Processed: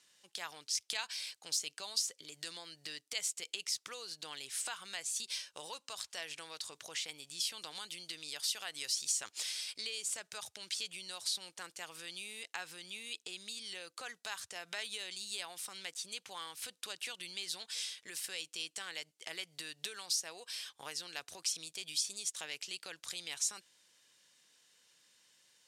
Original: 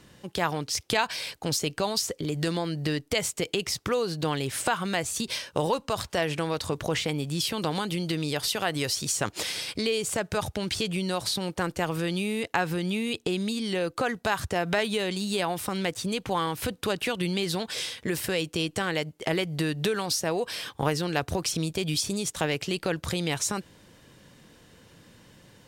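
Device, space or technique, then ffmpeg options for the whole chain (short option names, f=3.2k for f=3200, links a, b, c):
piezo pickup straight into a mixer: -af "lowpass=7.7k,aderivative,volume=-2dB"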